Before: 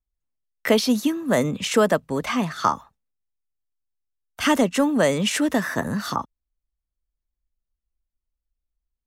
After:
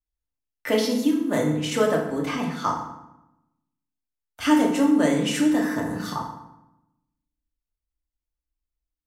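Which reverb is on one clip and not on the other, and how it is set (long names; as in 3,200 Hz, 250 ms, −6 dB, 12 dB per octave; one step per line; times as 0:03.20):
feedback delay network reverb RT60 0.88 s, low-frequency decay 1.35×, high-frequency decay 0.7×, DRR −1.5 dB
level −7.5 dB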